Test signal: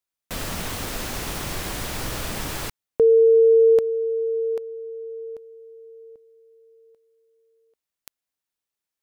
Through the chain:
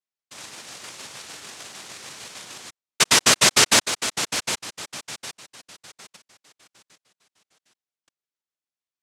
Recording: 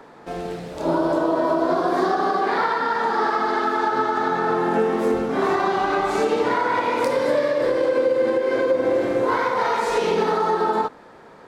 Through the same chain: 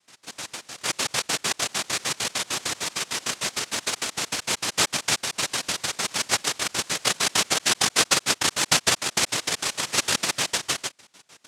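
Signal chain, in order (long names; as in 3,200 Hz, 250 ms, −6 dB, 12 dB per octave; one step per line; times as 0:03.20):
auto-filter high-pass square 6.6 Hz 470–4,800 Hz
cochlear-implant simulation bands 1
level −7.5 dB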